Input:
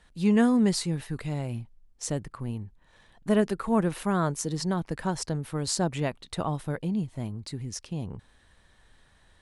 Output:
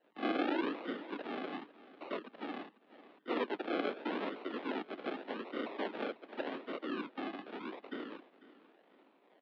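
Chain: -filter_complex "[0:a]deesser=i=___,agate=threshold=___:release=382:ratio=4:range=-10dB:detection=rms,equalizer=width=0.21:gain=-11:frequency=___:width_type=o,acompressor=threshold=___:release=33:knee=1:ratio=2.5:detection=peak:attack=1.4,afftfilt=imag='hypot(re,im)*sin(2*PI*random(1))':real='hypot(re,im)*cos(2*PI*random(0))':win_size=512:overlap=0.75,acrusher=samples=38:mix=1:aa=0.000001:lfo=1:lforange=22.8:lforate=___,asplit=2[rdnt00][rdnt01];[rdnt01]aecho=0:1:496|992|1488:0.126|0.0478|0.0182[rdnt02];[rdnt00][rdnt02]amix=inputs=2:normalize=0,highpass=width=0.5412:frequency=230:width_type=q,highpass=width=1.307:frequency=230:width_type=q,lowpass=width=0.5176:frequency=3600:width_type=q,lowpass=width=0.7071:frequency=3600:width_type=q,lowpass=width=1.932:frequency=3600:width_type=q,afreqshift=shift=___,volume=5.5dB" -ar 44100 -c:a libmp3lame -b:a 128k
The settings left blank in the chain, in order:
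0.95, -56dB, 770, -32dB, 0.85, 53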